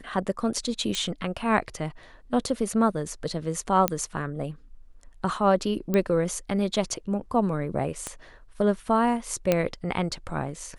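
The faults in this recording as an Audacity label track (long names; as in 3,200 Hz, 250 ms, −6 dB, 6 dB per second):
0.950000	0.950000	click −14 dBFS
3.880000	3.880000	click −6 dBFS
5.940000	5.940000	click −12 dBFS
8.070000	8.070000	click −17 dBFS
9.520000	9.520000	click −8 dBFS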